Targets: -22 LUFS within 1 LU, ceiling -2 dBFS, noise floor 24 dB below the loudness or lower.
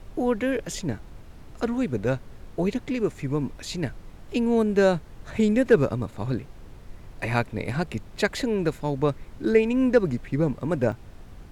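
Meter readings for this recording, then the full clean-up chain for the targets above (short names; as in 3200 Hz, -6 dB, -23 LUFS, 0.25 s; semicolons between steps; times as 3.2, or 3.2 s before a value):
dropouts 1; longest dropout 4.2 ms; noise floor -46 dBFS; noise floor target -50 dBFS; loudness -25.5 LUFS; peak -7.0 dBFS; loudness target -22.0 LUFS
-> interpolate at 10.92, 4.2 ms; noise print and reduce 6 dB; gain +3.5 dB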